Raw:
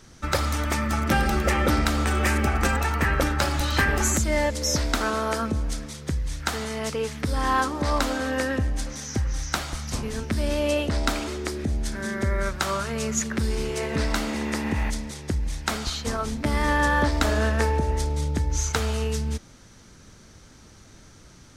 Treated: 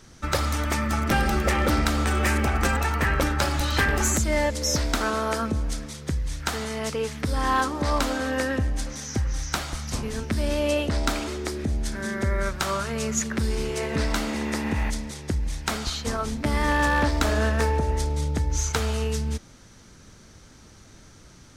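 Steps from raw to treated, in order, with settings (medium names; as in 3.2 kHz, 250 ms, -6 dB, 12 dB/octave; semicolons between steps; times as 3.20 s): one-sided wavefolder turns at -15.5 dBFS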